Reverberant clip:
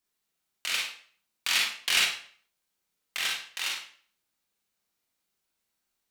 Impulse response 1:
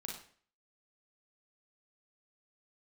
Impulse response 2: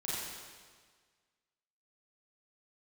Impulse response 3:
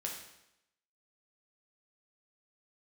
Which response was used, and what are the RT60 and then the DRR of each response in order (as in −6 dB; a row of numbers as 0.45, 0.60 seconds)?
1; 0.50, 1.6, 0.85 seconds; −1.5, −9.0, −1.5 decibels